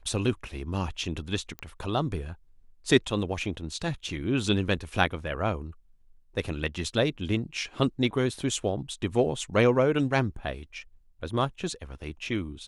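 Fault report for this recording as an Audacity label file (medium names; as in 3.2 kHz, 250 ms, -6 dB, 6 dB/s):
1.590000	1.590000	pop -21 dBFS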